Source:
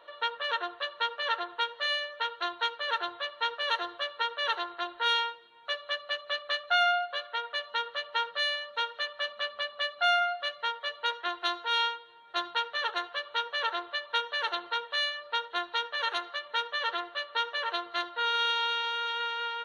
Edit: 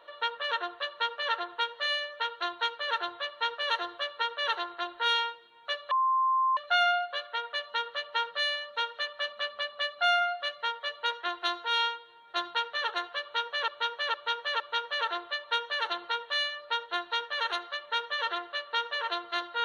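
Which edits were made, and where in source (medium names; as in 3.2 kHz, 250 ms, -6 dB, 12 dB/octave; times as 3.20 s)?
5.91–6.57 s: bleep 1.05 kHz -22.5 dBFS
13.22–13.68 s: loop, 4 plays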